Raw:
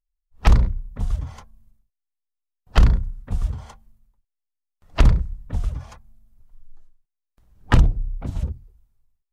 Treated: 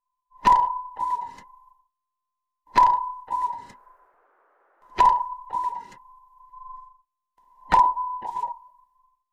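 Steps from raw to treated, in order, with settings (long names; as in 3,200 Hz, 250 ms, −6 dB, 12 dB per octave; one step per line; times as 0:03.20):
frequency inversion band by band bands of 1,000 Hz
0:03.59–0:05.24: noise in a band 380–1,500 Hz −59 dBFS
level −4.5 dB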